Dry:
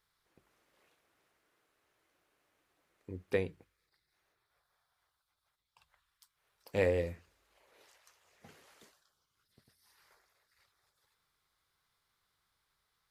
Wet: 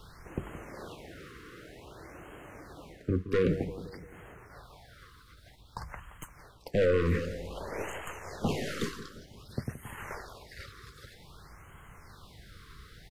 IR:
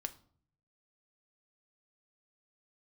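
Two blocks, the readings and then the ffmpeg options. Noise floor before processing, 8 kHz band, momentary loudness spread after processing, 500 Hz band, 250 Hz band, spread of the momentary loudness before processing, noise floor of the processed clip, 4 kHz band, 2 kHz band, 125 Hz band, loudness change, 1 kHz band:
−83 dBFS, can't be measured, 24 LU, +6.0 dB, +12.0 dB, 18 LU, −56 dBFS, +12.5 dB, +6.5 dB, +11.0 dB, +1.0 dB, +12.5 dB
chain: -filter_complex "[0:a]apsyclip=24dB,areverse,acompressor=threshold=-27dB:ratio=5,areverse,aeval=exprs='0.168*(cos(1*acos(clip(val(0)/0.168,-1,1)))-cos(1*PI/2))+0.00841*(cos(8*acos(clip(val(0)/0.168,-1,1)))-cos(8*PI/2))':channel_layout=same,lowshelf=frequency=330:gain=11,acrossover=split=200[link_01][link_02];[link_01]acompressor=threshold=-31dB:ratio=8[link_03];[link_03][link_02]amix=inputs=2:normalize=0,asoftclip=type=tanh:threshold=-23dB,bandreject=frequency=2400:width=29,asplit=2[link_04][link_05];[link_05]adelay=172,lowpass=frequency=1400:poles=1,volume=-12dB,asplit=2[link_06][link_07];[link_07]adelay=172,lowpass=frequency=1400:poles=1,volume=0.54,asplit=2[link_08][link_09];[link_09]adelay=172,lowpass=frequency=1400:poles=1,volume=0.54,asplit=2[link_10][link_11];[link_11]adelay=172,lowpass=frequency=1400:poles=1,volume=0.54,asplit=2[link_12][link_13];[link_13]adelay=172,lowpass=frequency=1400:poles=1,volume=0.54,asplit=2[link_14][link_15];[link_15]adelay=172,lowpass=frequency=1400:poles=1,volume=0.54[link_16];[link_04][link_06][link_08][link_10][link_12][link_14][link_16]amix=inputs=7:normalize=0,aeval=exprs='val(0)+0.000398*(sin(2*PI*60*n/s)+sin(2*PI*2*60*n/s)/2+sin(2*PI*3*60*n/s)/3+sin(2*PI*4*60*n/s)/4+sin(2*PI*5*60*n/s)/5)':channel_layout=same,highshelf=frequency=6000:gain=-11,afftfilt=real='re*(1-between(b*sr/1024,700*pow(4700/700,0.5+0.5*sin(2*PI*0.53*pts/sr))/1.41,700*pow(4700/700,0.5+0.5*sin(2*PI*0.53*pts/sr))*1.41))':imag='im*(1-between(b*sr/1024,700*pow(4700/700,0.5+0.5*sin(2*PI*0.53*pts/sr))/1.41,700*pow(4700/700,0.5+0.5*sin(2*PI*0.53*pts/sr))*1.41))':win_size=1024:overlap=0.75,volume=3dB"

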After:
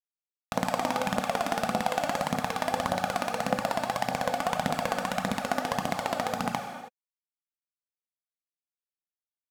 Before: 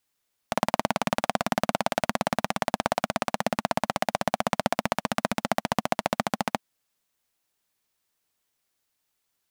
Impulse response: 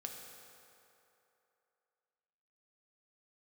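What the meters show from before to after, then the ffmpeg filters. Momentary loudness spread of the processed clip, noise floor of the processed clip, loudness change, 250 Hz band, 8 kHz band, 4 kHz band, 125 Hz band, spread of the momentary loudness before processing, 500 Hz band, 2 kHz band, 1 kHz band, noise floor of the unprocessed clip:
2 LU, below −85 dBFS, −1.5 dB, −2.0 dB, −2.0 dB, −2.0 dB, −1.5 dB, 2 LU, −1.5 dB, −1.5 dB, −1.0 dB, −78 dBFS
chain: -filter_complex "[0:a]acrusher=bits=7:mix=0:aa=0.5[link_01];[1:a]atrim=start_sample=2205,afade=type=out:start_time=0.38:duration=0.01,atrim=end_sample=17199[link_02];[link_01][link_02]afir=irnorm=-1:irlink=0,aphaser=in_gain=1:out_gain=1:delay=3.5:decay=0.47:speed=1.7:type=triangular"

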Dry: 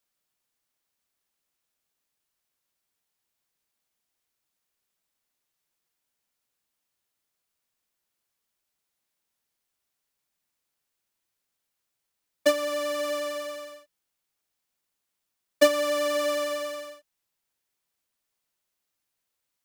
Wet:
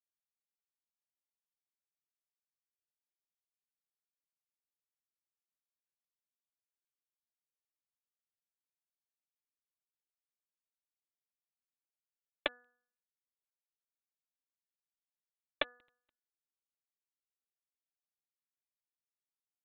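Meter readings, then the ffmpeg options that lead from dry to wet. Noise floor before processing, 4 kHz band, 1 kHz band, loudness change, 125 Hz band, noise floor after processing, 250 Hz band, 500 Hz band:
−82 dBFS, −13.0 dB, −17.5 dB, −13.0 dB, can't be measured, below −85 dBFS, −23.5 dB, −24.0 dB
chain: -filter_complex "[0:a]aecho=1:1:50|90|175|245|463:0.133|0.1|0.282|0.112|0.126,alimiter=limit=-15dB:level=0:latency=1:release=351,acrossover=split=190[link_01][link_02];[link_02]acompressor=threshold=-34dB:ratio=8[link_03];[link_01][link_03]amix=inputs=2:normalize=0,aresample=8000,acrusher=bits=3:mix=0:aa=0.5,aresample=44100,bandreject=frequency=244.7:width_type=h:width=4,bandreject=frequency=489.4:width_type=h:width=4,bandreject=frequency=734.1:width_type=h:width=4,bandreject=frequency=978.8:width_type=h:width=4,bandreject=frequency=1223.5:width_type=h:width=4,bandreject=frequency=1468.2:width_type=h:width=4,bandreject=frequency=1712.9:width_type=h:width=4,volume=6.5dB"

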